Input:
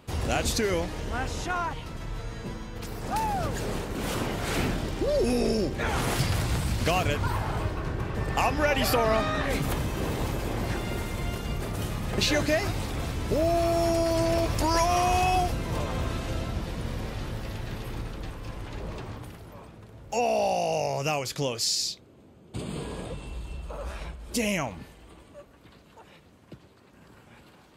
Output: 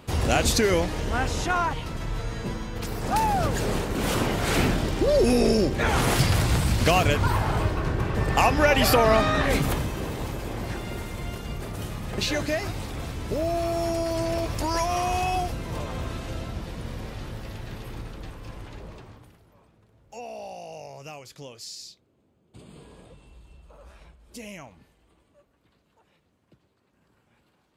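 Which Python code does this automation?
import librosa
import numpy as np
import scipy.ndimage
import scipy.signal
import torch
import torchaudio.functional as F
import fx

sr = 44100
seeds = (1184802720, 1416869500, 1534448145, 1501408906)

y = fx.gain(x, sr, db=fx.line((9.56, 5.0), (10.08, -2.0), (18.61, -2.0), (19.46, -13.0)))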